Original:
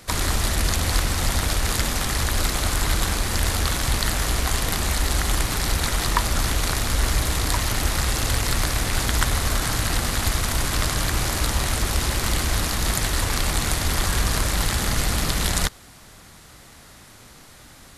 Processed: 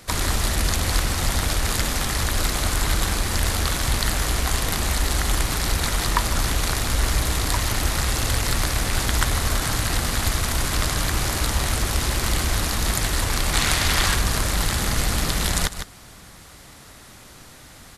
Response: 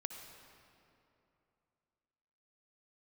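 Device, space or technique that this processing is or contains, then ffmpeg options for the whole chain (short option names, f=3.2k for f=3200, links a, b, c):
ducked delay: -filter_complex "[0:a]asettb=1/sr,asplit=3[a][b][c];[a]atrim=end=13.534[d];[b]atrim=start=13.53:end=14.15,asetpts=PTS-STARTPTS,afade=t=in:d=0.004:c=qsin,afade=t=out:st=0.616:d=0.004:c=qsin,equalizer=f=2.6k:t=o:w=2.8:g=7[e];[c]atrim=start=14.146[f];[d][e]acrossfade=d=0.004:c1=hsin:c2=qsin[g];[g][f]acrossfade=d=0.004:c1=qsin:c2=hsin,asplit=3[h][i][j];[i]adelay=153,volume=-3dB[k];[j]apad=whole_len=799603[l];[k][l]sidechaincompress=threshold=-31dB:ratio=12:attack=16:release=218[m];[h][m]amix=inputs=2:normalize=0"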